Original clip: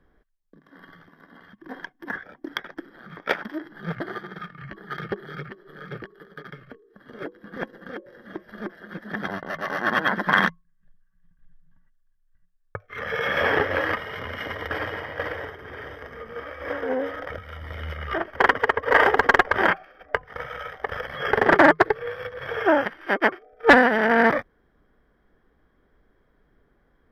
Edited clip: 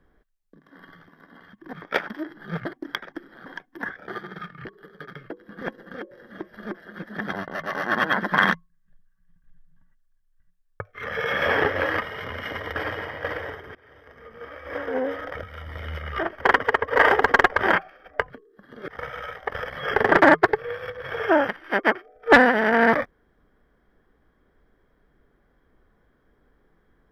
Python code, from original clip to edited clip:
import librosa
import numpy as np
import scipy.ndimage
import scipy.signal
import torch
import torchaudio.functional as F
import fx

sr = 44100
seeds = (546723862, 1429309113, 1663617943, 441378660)

y = fx.edit(x, sr, fx.swap(start_s=1.73, length_s=0.62, other_s=3.08, other_length_s=1.0),
    fx.cut(start_s=4.65, length_s=1.37),
    fx.move(start_s=6.67, length_s=0.58, to_s=20.25),
    fx.fade_in_from(start_s=15.7, length_s=1.23, floor_db=-23.0), tone=tone)